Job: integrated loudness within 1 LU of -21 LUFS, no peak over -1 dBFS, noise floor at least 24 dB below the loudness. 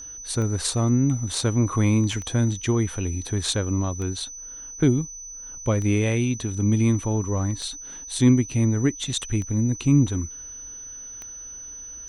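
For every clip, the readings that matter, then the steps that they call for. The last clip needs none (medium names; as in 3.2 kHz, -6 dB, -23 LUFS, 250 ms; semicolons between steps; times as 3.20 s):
clicks found 7; steady tone 6 kHz; tone level -36 dBFS; loudness -23.5 LUFS; peak level -8.0 dBFS; loudness target -21.0 LUFS
-> de-click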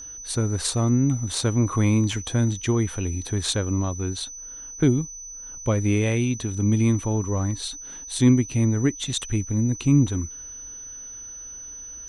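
clicks found 0; steady tone 6 kHz; tone level -36 dBFS
-> band-stop 6 kHz, Q 30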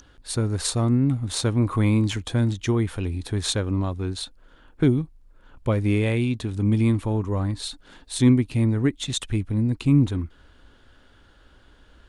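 steady tone not found; loudness -23.5 LUFS; peak level -8.5 dBFS; loudness target -21.0 LUFS
-> trim +2.5 dB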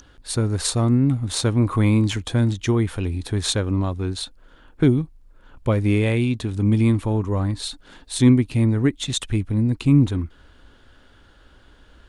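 loudness -21.0 LUFS; peak level -6.0 dBFS; noise floor -52 dBFS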